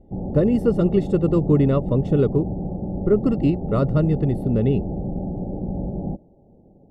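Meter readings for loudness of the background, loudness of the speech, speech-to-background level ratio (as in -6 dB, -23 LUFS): -28.5 LUFS, -21.0 LUFS, 7.5 dB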